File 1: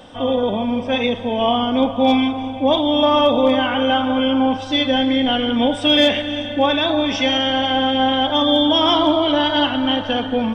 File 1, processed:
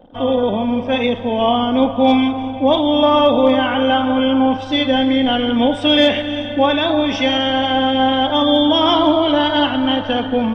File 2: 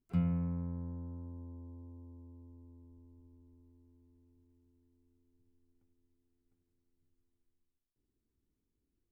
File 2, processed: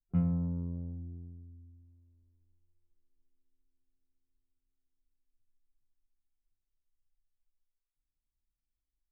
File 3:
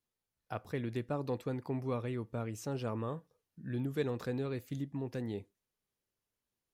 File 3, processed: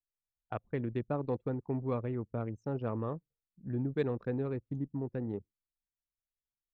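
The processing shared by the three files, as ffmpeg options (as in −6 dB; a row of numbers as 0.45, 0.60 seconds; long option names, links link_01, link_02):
-af "anlmdn=1,aemphasis=mode=reproduction:type=cd,volume=2dB"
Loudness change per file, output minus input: +1.5, +4.0, +2.0 LU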